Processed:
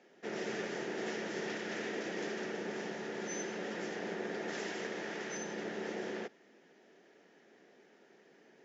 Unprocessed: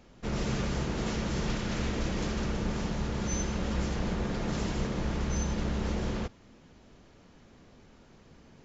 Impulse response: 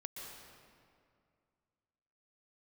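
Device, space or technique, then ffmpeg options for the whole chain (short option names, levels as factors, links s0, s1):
television speaker: -filter_complex "[0:a]asettb=1/sr,asplit=3[s0][s1][s2];[s0]atrim=end=4.484[s3];[s1]atrim=start=4.48:end=5.37,asetpts=PTS-STARTPTS,afade=t=in:d=0.004:c=qsin,afade=t=out:st=0.886:d=0.004:c=qsin,tiltshelf=f=750:g=-3[s4];[s2]atrim=start=5.366[s5];[s3][s4]acrossfade=d=0.004:c1=hsin:c2=qsin[s6];[s6][s5]acrossfade=d=0.004:c1=qsin:c2=hsin,highpass=f=230:w=0.5412,highpass=f=230:w=1.3066,equalizer=f=250:t=q:w=4:g=-5,equalizer=f=400:t=q:w=4:g=7,equalizer=f=720:t=q:w=4:g=3,equalizer=f=1100:t=q:w=4:g=-8,equalizer=f=1800:t=q:w=4:g=9,equalizer=f=4200:t=q:w=4:g=-5,lowpass=f=6800:w=0.5412,lowpass=f=6800:w=1.3066,volume=0.562"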